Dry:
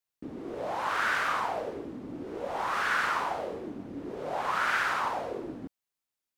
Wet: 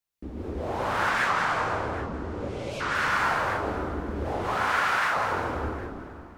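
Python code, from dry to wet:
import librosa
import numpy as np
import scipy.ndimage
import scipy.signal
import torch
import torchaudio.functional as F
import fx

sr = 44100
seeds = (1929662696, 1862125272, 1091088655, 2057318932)

y = fx.octave_divider(x, sr, octaves=2, level_db=2.0)
y = fx.cheby1_lowpass(y, sr, hz=7700.0, order=2, at=(1.09, 2.95))
y = fx.spec_erase(y, sr, start_s=2.49, length_s=0.32, low_hz=610.0, high_hz=2000.0)
y = fx.highpass(y, sr, hz=470.0, slope=6, at=(4.38, 5.17))
y = fx.echo_feedback(y, sr, ms=538, feedback_pct=44, wet_db=-23.5)
y = fx.rev_plate(y, sr, seeds[0], rt60_s=2.2, hf_ratio=0.7, predelay_ms=115, drr_db=-2.5)
y = fx.record_warp(y, sr, rpm=78.0, depth_cents=250.0)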